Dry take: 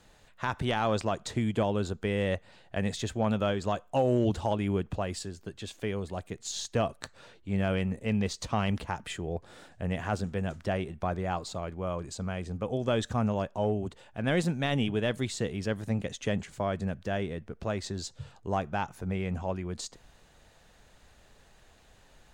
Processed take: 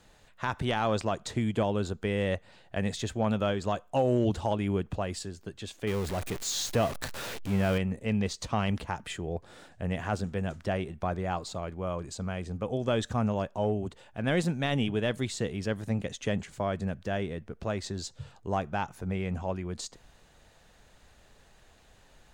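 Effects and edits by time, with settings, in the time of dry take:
5.87–7.78 zero-crossing step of -32.5 dBFS

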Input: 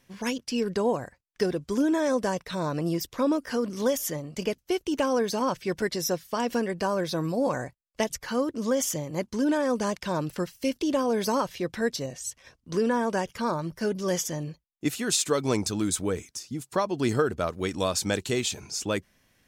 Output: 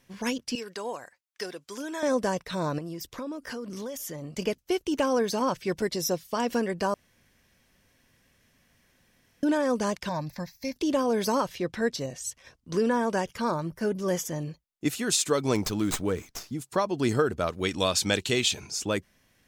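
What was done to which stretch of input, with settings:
0.55–2.03 HPF 1400 Hz 6 dB/oct
2.78–4.22 compressor, threshold -33 dBFS
5.73–6.35 bell 1600 Hz -5.5 dB
6.94–9.43 room tone
10.09–10.76 fixed phaser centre 2000 Hz, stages 8
11.57–11.99 high shelf 9900 Hz -9 dB
13.63–14.36 bell 4500 Hz -6 dB 1.6 oct
15.55–16.55 running maximum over 3 samples
17.45–18.67 dynamic EQ 3100 Hz, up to +7 dB, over -45 dBFS, Q 1

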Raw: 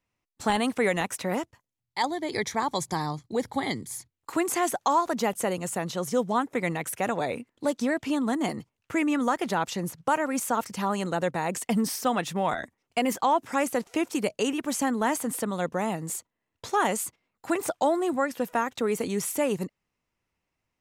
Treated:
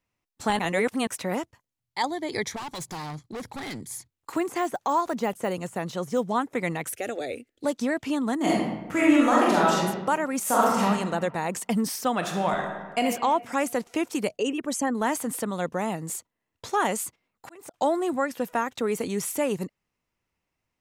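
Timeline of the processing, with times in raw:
0.59–1.07 reverse
2.56–3.82 overloaded stage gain 32.5 dB
4.36–6.26 de-esser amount 95%
6.93–7.64 fixed phaser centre 410 Hz, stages 4
8.36–9.8 reverb throw, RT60 1.1 s, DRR -5.5 dB
10.42–10.82 reverb throw, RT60 1.3 s, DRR -7.5 dB
12.16–13.02 reverb throw, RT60 1.5 s, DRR 2.5 dB
14.37–14.95 formant sharpening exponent 1.5
16.82–17.74 auto swell 0.647 s

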